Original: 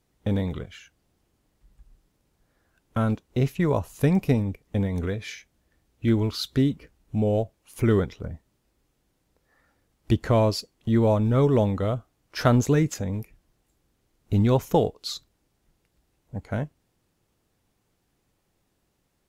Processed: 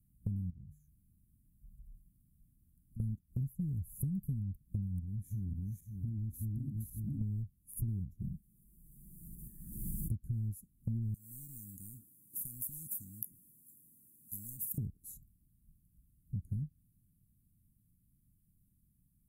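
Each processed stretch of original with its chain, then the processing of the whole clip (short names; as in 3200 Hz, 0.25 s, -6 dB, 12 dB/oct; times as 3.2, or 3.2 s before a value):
0.5–3 de-hum 49.71 Hz, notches 3 + compressor 2.5:1, threshold -53 dBFS
4.99–7.21 regenerating reverse delay 0.273 s, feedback 44%, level -2 dB + compressor 4:1, threshold -32 dBFS
8.21–10.11 tone controls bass -6 dB, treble 0 dB + comb 5.6 ms, depth 75% + backwards sustainer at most 23 dB/s
11.14–14.78 HPF 460 Hz + compressor 2:1, threshold -29 dBFS + spectral compressor 10:1
whole clip: inverse Chebyshev band-stop 500–5000 Hz, stop band 50 dB; dynamic EQ 250 Hz, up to -5 dB, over -39 dBFS, Q 1; compressor 6:1, threshold -38 dBFS; gain +3.5 dB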